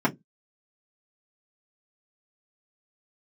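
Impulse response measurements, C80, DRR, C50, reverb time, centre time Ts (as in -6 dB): 36.5 dB, -5.0 dB, 23.5 dB, 0.15 s, 7 ms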